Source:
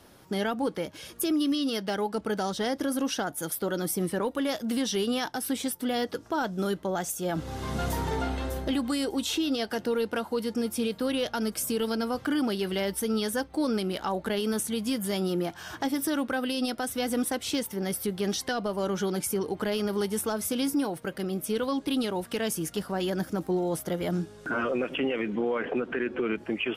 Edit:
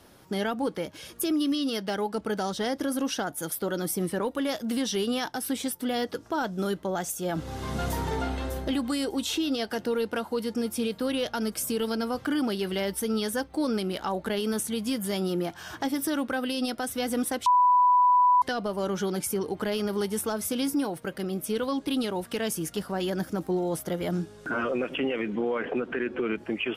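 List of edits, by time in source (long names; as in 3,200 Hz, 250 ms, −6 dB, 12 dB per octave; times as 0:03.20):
0:17.46–0:18.42: beep over 991 Hz −16.5 dBFS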